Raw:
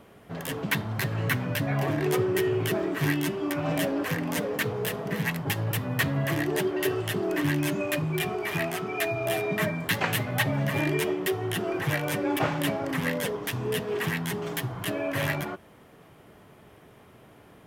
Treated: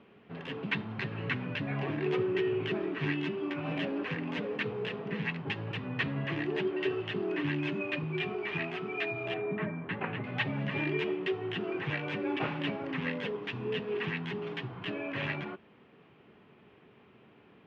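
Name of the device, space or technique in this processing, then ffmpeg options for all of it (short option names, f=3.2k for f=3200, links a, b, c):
guitar cabinet: -filter_complex "[0:a]highpass=86,equalizer=f=100:t=q:w=4:g=-4,equalizer=f=220:t=q:w=4:g=5,equalizer=f=400:t=q:w=4:g=4,equalizer=f=630:t=q:w=4:g=-5,equalizer=f=2.6k:t=q:w=4:g=7,lowpass=f=3.8k:w=0.5412,lowpass=f=3.8k:w=1.3066,asettb=1/sr,asplit=3[a][b][c];[a]atrim=end=9.344[d];[b]atrim=start=9.34:end=10.24,asetpts=PTS-STARTPTS,afade=t=in:d=0.004:c=qsin,afade=t=out:st=0.896:d=0.004:c=qsin,lowpass=1.6k[e];[c]atrim=start=10.236[f];[d][e]acrossfade=d=0.004:c1=hsin:c2=qsin[g];[g][f]acrossfade=d=0.004:c1=qsin:c2=hsin,volume=-7dB"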